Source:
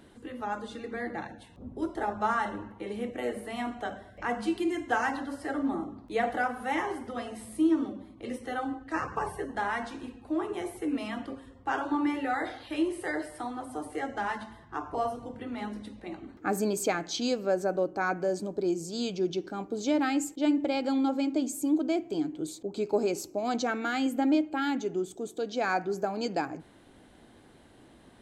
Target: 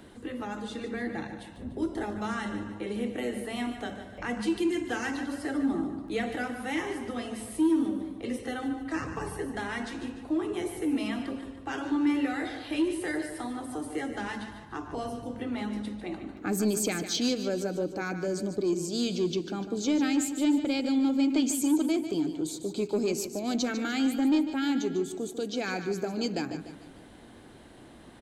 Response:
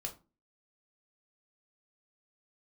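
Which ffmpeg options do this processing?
-filter_complex "[0:a]asettb=1/sr,asplit=3[link_01][link_02][link_03];[link_01]atrim=end=21.304[link_04];[link_02]atrim=start=21.3:end=21.86,asetpts=PTS-STARTPTS,afade=type=in:duration=0.004:curve=qsin,afade=type=out:start_time=0.556:duration=0.004:curve=qsin,equalizer=frequency=2300:width=0.55:gain=10[link_05];[link_03]atrim=start=21.856[link_06];[link_04][link_05]acrossfade=duration=0.004:curve1=hsin:curve2=qsin[link_07];[link_07][link_06]acrossfade=duration=0.004:curve1=qsin:curve2=hsin,acrossover=split=400|2000[link_08][link_09][link_10];[link_09]acompressor=threshold=-45dB:ratio=6[link_11];[link_08][link_11][link_10]amix=inputs=3:normalize=0,asoftclip=type=tanh:threshold=-22dB,aecho=1:1:148|296|444|592|740:0.299|0.134|0.0605|0.0272|0.0122,volume=4.5dB"

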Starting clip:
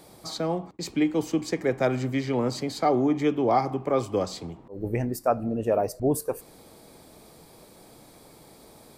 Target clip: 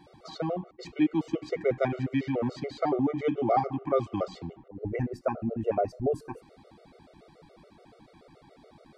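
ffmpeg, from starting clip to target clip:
ffmpeg -i in.wav -af "lowpass=3200,afftfilt=real='re*gt(sin(2*PI*7*pts/sr)*(1-2*mod(floor(b*sr/1024/380),2)),0)':imag='im*gt(sin(2*PI*7*pts/sr)*(1-2*mod(floor(b*sr/1024/380),2)),0)':win_size=1024:overlap=0.75" out.wav

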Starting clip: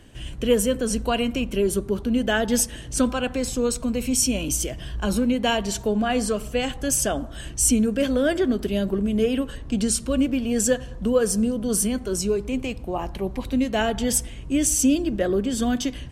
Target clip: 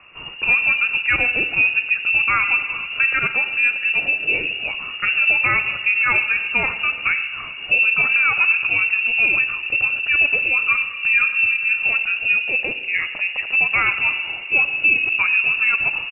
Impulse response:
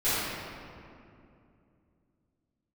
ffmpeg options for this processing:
-filter_complex "[0:a]highpass=69,tiltshelf=frequency=730:gain=-3.5,aecho=1:1:112:0.0794,asplit=2[link_01][link_02];[1:a]atrim=start_sample=2205,lowshelf=frequency=320:gain=9.5[link_03];[link_02][link_03]afir=irnorm=-1:irlink=0,volume=-25.5dB[link_04];[link_01][link_04]amix=inputs=2:normalize=0,lowpass=frequency=2500:width_type=q:width=0.5098,lowpass=frequency=2500:width_type=q:width=0.6013,lowpass=frequency=2500:width_type=q:width=0.9,lowpass=frequency=2500:width_type=q:width=2.563,afreqshift=-2900,alimiter=level_in=12.5dB:limit=-1dB:release=50:level=0:latency=1,volume=-7dB"

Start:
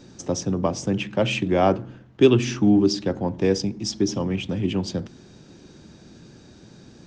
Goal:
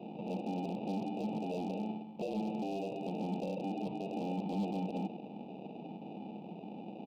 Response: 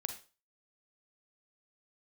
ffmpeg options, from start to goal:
-filter_complex "[0:a]afftfilt=real='real(if(lt(b,272),68*(eq(floor(b/68),0)*3+eq(floor(b/68),1)*2+eq(floor(b/68),2)*1+eq(floor(b/68),3)*0)+mod(b,68),b),0)':imag='imag(if(lt(b,272),68*(eq(floor(b/68),0)*3+eq(floor(b/68),1)*2+eq(floor(b/68),2)*1+eq(floor(b/68),3)*0)+mod(b,68),b),0)':win_size=2048:overlap=0.75,acompressor=threshold=-22dB:ratio=8,aresample=16000,asoftclip=type=tanh:threshold=-24.5dB,aresample=44100,aeval=exprs='val(0)+0.00112*(sin(2*PI*50*n/s)+sin(2*PI*2*50*n/s)/2+sin(2*PI*3*50*n/s)/3+sin(2*PI*4*50*n/s)/4+sin(2*PI*5*50*n/s)/5)':channel_layout=same,acontrast=34,equalizer=frequency=1500:width_type=o:width=1.4:gain=-11.5,asplit=2[link_01][link_02];[link_02]adelay=139.9,volume=-26dB,highshelf=frequency=4000:gain=-3.15[link_03];[link_01][link_03]amix=inputs=2:normalize=0,alimiter=level_in=4dB:limit=-24dB:level=0:latency=1:release=26,volume=-4dB,acrusher=samples=41:mix=1:aa=0.000001,highpass=frequency=170:width=0.5412,highpass=frequency=170:width=1.3066,equalizer=frequency=190:width_type=q:width=4:gain=5,equalizer=frequency=270:width_type=q:width=4:gain=-6,equalizer=frequency=400:width_type=q:width=4:gain=-7,equalizer=frequency=620:width_type=q:width=4:gain=-5,equalizer=frequency=1300:width_type=q:width=4:gain=4,equalizer=frequency=1800:width_type=q:width=4:gain=6,lowpass=frequency=2300:width=0.5412,lowpass=frequency=2300:width=1.3066,volume=27dB,asoftclip=hard,volume=-27dB,asuperstop=centerf=1600:order=8:qfactor=0.99,volume=1dB"

